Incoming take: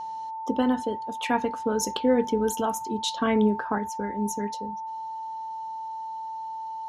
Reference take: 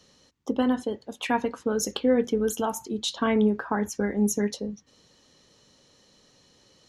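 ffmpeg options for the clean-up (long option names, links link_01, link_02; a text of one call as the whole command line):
ffmpeg -i in.wav -af "bandreject=frequency=890:width=30,asetnsamples=nb_out_samples=441:pad=0,asendcmd='3.78 volume volume 5.5dB',volume=0dB" out.wav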